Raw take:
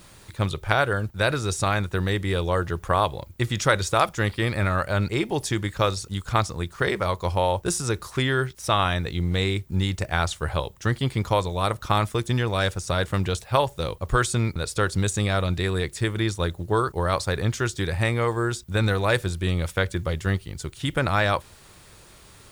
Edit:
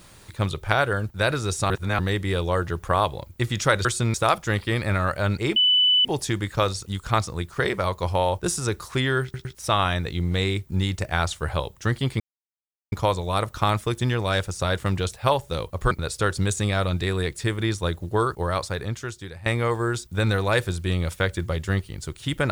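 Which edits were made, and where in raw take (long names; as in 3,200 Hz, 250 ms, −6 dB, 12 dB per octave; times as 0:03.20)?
0:01.70–0:01.99: reverse
0:05.27: insert tone 2,990 Hz −15 dBFS 0.49 s
0:08.45: stutter 0.11 s, 3 plays
0:11.20: splice in silence 0.72 s
0:14.19–0:14.48: move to 0:03.85
0:16.85–0:18.03: fade out, to −16.5 dB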